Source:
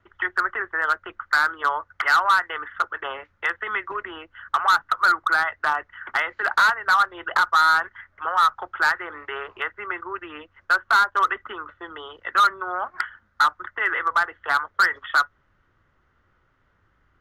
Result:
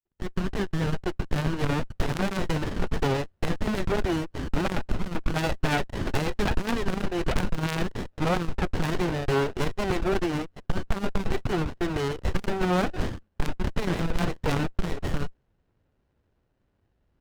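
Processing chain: opening faded in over 1.60 s; sample leveller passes 3; running maximum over 33 samples; gain +1.5 dB

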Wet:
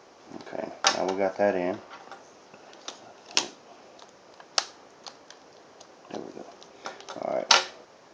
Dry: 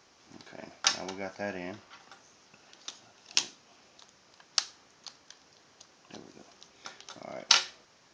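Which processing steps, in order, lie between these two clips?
bell 530 Hz +13.5 dB 2.6 oct; gain +1 dB

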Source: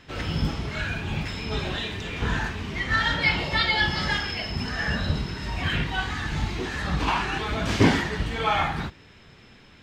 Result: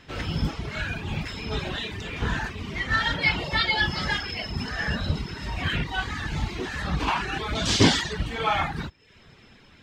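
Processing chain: reverb removal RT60 0.56 s; 7.55–8.13 band shelf 5200 Hz +11 dB

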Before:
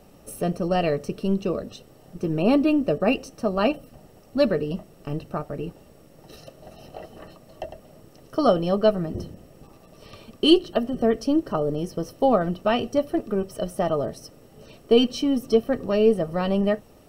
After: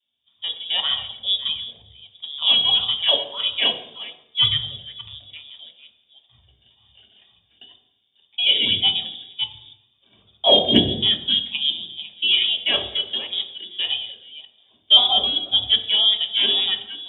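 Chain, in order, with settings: reverse delay 0.295 s, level -5.5 dB; in parallel at -0.5 dB: level quantiser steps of 23 dB; on the sum: wow and flutter 150 cents; inverted band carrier 3600 Hz; HPF 66 Hz 24 dB/oct; on a send at -2 dB: bell 1000 Hz -3 dB 0.66 oct + reverb RT60 1.1 s, pre-delay 3 ms; on the sum: short-mantissa float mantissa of 8-bit; three-band expander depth 70%; gain -5 dB

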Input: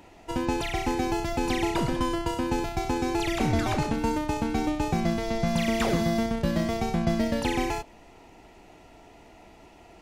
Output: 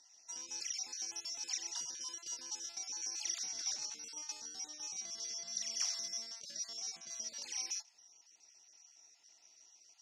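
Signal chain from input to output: random spectral dropouts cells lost 29%; limiter -20.5 dBFS, peak gain reduction 7.5 dB; band-pass 5700 Hz, Q 20; gain +16.5 dB

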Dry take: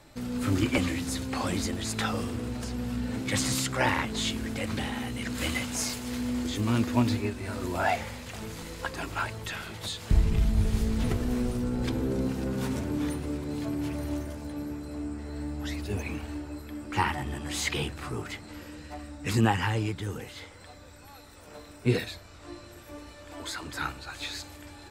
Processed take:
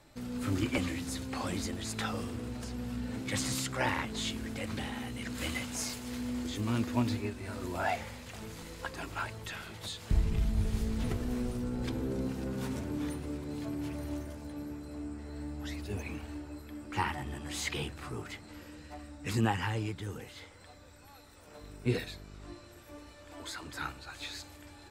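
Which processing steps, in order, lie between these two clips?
21.61–22.53 buzz 50 Hz, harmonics 9, -44 dBFS -5 dB/oct; gain -5.5 dB

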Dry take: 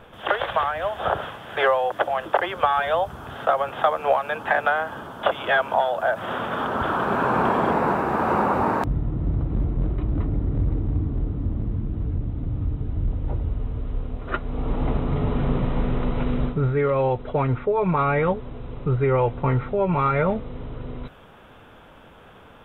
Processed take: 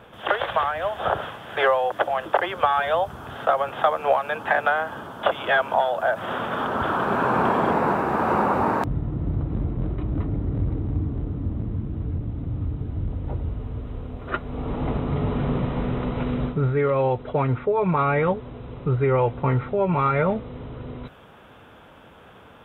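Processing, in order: HPF 57 Hz

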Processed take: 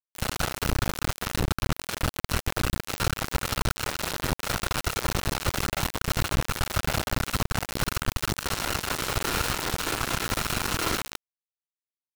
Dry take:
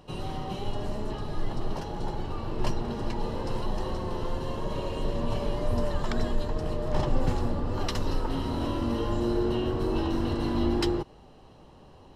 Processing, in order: sample sorter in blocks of 32 samples; bell 220 Hz -15 dB 1.8 oct; reverse bouncing-ball echo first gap 60 ms, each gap 1.2×, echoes 5; dynamic EQ 480 Hz, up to +5 dB, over -45 dBFS, Q 0.75; in parallel at +1 dB: limiter -19 dBFS, peak gain reduction 7.5 dB; on the sum: compressor 4:1, threshold -23 dBFS, peak gain reduction 9 dB; reverb removal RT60 0.53 s; whisperiser; bit-crush 4-bit; Doppler distortion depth 0.12 ms

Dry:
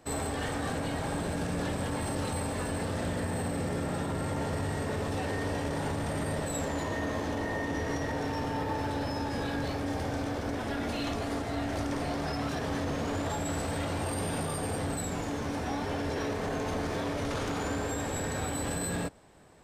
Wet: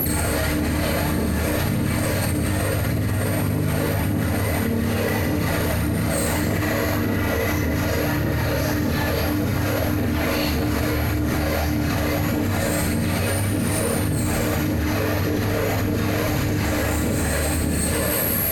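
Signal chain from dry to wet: minimum comb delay 0.48 ms; HPF 82 Hz; low shelf 170 Hz +9.5 dB; limiter -25 dBFS, peak gain reduction 6.5 dB; whine 11000 Hz -47 dBFS; varispeed +6%; phaser 1.7 Hz, delay 2.1 ms, feedback 59%; on a send: thinning echo 0.165 s, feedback 40%, level -9.5 dB; on the sum: Schroeder reverb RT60 0.35 s, combs from 27 ms, DRR -6.5 dB; fast leveller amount 100%; gain -5 dB

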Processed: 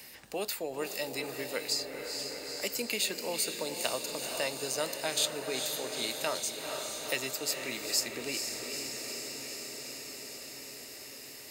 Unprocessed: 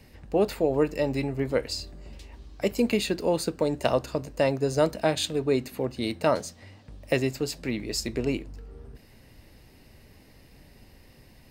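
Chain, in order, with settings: tilt +4.5 dB/oct; diffused feedback echo 0.461 s, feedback 71%, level -7.5 dB; three-band squash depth 40%; gain -7.5 dB

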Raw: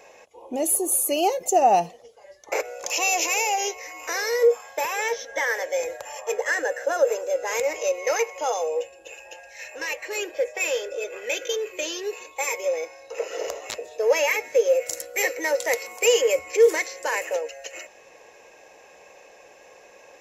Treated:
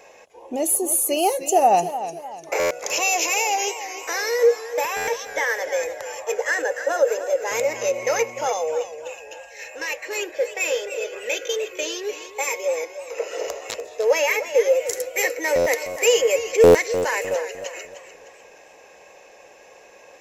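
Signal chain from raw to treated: 7.5–8.47 buzz 120 Hz, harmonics 4, -47 dBFS 0 dB/oct; stuck buffer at 2.59/4.96/15.55/16.63, samples 512, times 9; warbling echo 0.301 s, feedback 41%, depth 92 cents, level -12 dB; gain +1.5 dB

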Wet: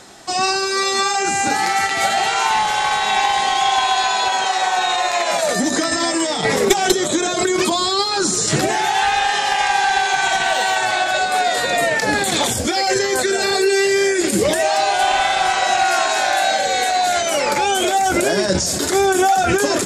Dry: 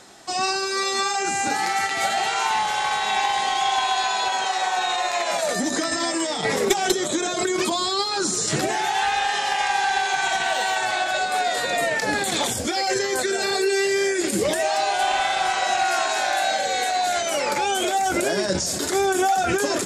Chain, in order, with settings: low shelf 110 Hz +5 dB; gain +5 dB

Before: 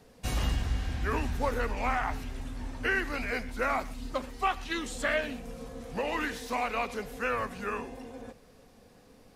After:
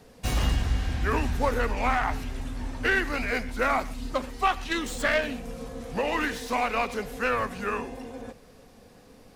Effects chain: tracing distortion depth 0.038 ms; gain +4.5 dB

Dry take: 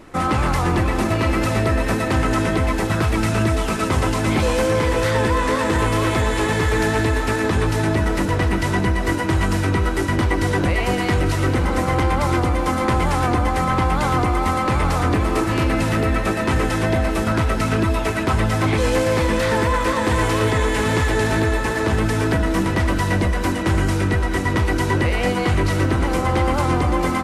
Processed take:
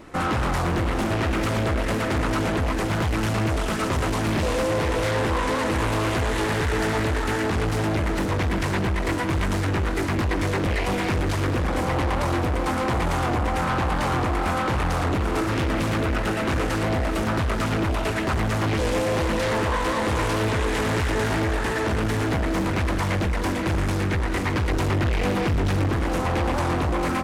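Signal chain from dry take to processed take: 24.69–25.89 low shelf 250 Hz +5.5 dB; tube stage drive 19 dB, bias 0.3; Doppler distortion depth 0.53 ms

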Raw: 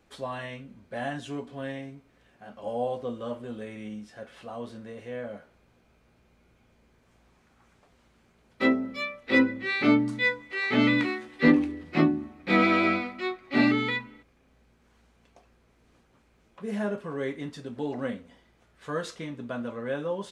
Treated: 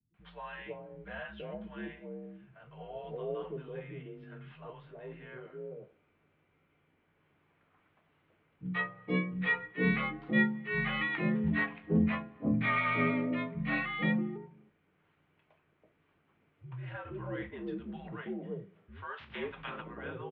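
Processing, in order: 19.03–19.66 spectral limiter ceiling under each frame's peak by 24 dB; three bands offset in time lows, highs, mids 0.14/0.47 s, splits 220/730 Hz; mistuned SSB -78 Hz 170–3200 Hz; gain -4.5 dB

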